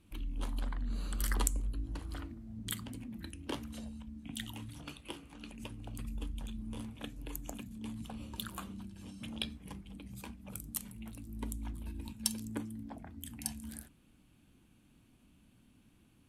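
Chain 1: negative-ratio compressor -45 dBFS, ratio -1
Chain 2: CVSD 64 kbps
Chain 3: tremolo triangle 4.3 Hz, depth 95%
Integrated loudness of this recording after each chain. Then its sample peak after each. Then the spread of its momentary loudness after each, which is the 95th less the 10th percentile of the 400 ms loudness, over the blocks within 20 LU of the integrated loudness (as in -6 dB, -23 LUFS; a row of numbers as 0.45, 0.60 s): -45.0, -43.0, -46.5 LUFS; -23.5, -18.5, -9.5 dBFS; 18, 9, 10 LU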